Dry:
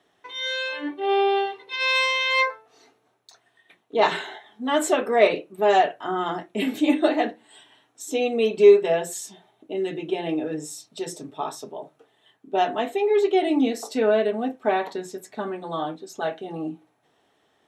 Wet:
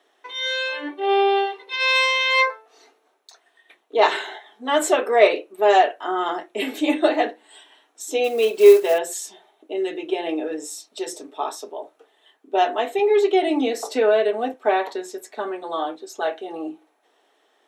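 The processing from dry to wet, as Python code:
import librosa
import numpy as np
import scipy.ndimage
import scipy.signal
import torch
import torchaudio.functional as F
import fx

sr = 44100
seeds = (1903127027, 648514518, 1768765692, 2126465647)

y = fx.block_float(x, sr, bits=5, at=(8.24, 9.0))
y = scipy.signal.sosfilt(scipy.signal.butter(4, 320.0, 'highpass', fs=sr, output='sos'), y)
y = fx.band_squash(y, sr, depth_pct=40, at=(12.99, 14.54))
y = y * 10.0 ** (3.0 / 20.0)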